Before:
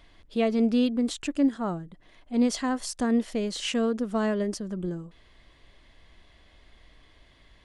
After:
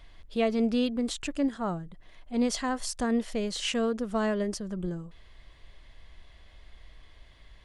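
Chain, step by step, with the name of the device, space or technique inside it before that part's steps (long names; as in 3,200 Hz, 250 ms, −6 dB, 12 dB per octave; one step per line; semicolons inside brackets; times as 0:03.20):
low shelf boost with a cut just above (low-shelf EQ 68 Hz +7.5 dB; parametric band 280 Hz −5.5 dB 0.91 octaves)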